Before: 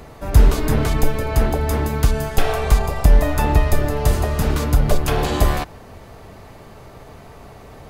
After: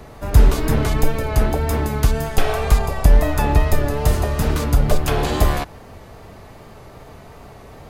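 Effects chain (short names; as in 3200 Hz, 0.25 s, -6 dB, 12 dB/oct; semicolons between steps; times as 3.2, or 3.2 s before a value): pre-echo 0.118 s -22.5 dB; wow and flutter 39 cents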